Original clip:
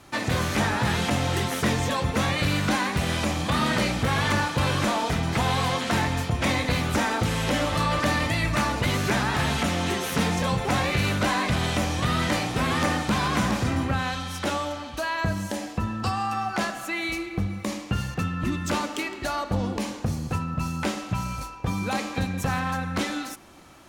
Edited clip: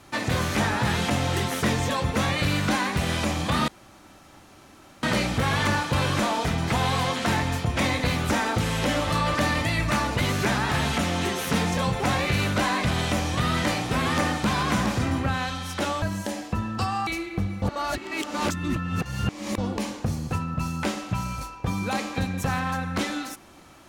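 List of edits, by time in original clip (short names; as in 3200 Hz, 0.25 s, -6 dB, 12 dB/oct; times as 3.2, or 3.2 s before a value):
3.68 insert room tone 1.35 s
14.67–15.27 cut
16.32–17.07 cut
17.62–19.58 reverse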